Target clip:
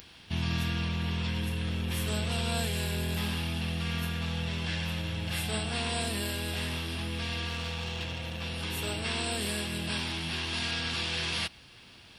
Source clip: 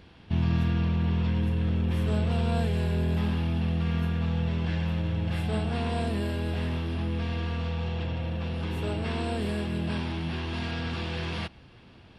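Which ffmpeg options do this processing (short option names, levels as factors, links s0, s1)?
-filter_complex "[0:a]acompressor=mode=upward:threshold=0.00355:ratio=2.5,crystalizer=i=10:c=0,asettb=1/sr,asplit=3[s0][s1][s2];[s0]atrim=end=7.494[s3];[s1]atrim=start=7.49:end=8.41,asetpts=PTS-STARTPTS,afade=t=in:d=0.004:c=qsin,afade=t=out:st=0.916:d=0.004:c=qsin,aeval=exprs='0.158*(cos(1*acos(clip(val(0)/0.158,-1,1)))-cos(1*PI/2))+0.00891*(cos(7*acos(clip(val(0)/0.158,-1,1)))-cos(7*PI/2))':c=same[s4];[s2]atrim=start=8.406[s5];[s3][s4]acrossfade=d=0.004:c1=hsin:c2=qsin[s6];[s6][s5]acrossfade=d=0.004:c1=qsin:c2=hsin,volume=0.473"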